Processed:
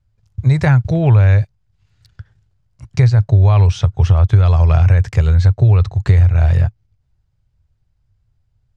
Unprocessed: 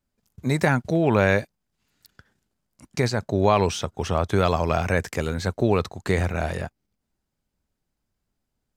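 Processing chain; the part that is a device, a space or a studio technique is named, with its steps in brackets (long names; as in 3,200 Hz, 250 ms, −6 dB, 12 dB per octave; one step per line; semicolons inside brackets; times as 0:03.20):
jukebox (low-pass filter 5,800 Hz 12 dB per octave; low shelf with overshoot 160 Hz +13.5 dB, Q 3; downward compressor 6 to 1, threshold −11 dBFS, peak gain reduction 9 dB)
level +3.5 dB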